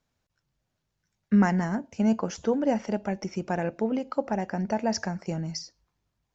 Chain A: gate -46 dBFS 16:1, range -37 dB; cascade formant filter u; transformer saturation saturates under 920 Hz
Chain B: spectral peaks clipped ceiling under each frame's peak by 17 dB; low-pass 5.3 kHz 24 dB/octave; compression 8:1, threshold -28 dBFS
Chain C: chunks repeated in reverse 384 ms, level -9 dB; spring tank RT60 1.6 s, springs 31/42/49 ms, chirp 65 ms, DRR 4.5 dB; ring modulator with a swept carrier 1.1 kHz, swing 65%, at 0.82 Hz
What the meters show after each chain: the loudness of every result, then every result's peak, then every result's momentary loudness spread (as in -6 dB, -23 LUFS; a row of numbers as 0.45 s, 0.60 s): -40.0 LUFS, -34.5 LUFS, -27.5 LUFS; -20.0 dBFS, -16.5 dBFS, -11.5 dBFS; 9 LU, 3 LU, 8 LU